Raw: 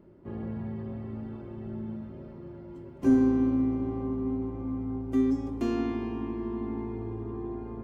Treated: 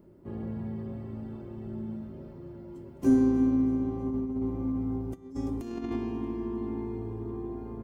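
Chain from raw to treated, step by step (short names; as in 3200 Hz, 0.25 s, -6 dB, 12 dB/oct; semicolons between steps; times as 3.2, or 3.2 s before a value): bell 2500 Hz -6 dB 2.7 oct; 4.06–5.96 negative-ratio compressor -32 dBFS, ratio -0.5; high shelf 3300 Hz +9 dB; feedback echo 0.315 s, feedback 54%, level -18 dB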